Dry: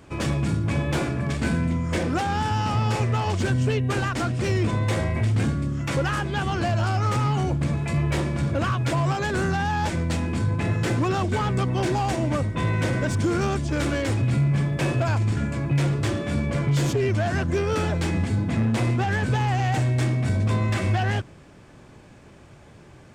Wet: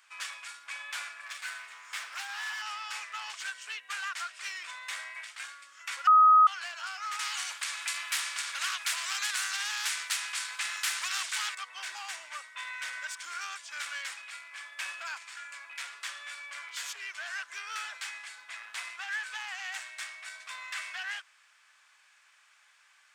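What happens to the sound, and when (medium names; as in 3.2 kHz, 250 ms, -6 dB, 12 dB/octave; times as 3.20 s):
1.22–2.62 s: comb filter that takes the minimum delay 8.7 ms
6.07–6.47 s: bleep 1.26 kHz -7.5 dBFS
7.19–11.55 s: spectrum-flattening compressor 2:1
whole clip: high-pass 1.3 kHz 24 dB/octave; trim -4 dB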